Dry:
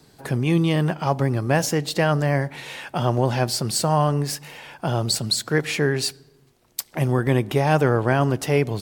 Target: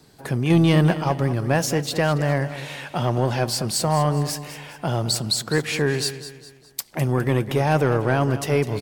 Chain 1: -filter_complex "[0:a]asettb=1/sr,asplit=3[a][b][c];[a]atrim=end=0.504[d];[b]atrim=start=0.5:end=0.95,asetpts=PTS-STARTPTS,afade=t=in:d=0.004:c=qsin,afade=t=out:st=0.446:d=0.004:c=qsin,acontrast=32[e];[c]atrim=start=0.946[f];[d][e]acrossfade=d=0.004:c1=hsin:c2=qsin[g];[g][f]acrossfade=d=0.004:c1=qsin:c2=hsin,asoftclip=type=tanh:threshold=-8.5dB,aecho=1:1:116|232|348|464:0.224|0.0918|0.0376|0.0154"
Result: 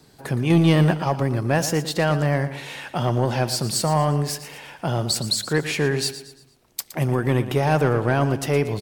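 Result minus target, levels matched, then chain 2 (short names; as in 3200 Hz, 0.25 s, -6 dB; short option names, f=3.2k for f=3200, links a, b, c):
echo 89 ms early
-filter_complex "[0:a]asettb=1/sr,asplit=3[a][b][c];[a]atrim=end=0.504[d];[b]atrim=start=0.5:end=0.95,asetpts=PTS-STARTPTS,afade=t=in:d=0.004:c=qsin,afade=t=out:st=0.446:d=0.004:c=qsin,acontrast=32[e];[c]atrim=start=0.946[f];[d][e]acrossfade=d=0.004:c1=hsin:c2=qsin[g];[g][f]acrossfade=d=0.004:c1=qsin:c2=hsin,asoftclip=type=tanh:threshold=-8.5dB,aecho=1:1:205|410|615|820:0.224|0.0918|0.0376|0.0154"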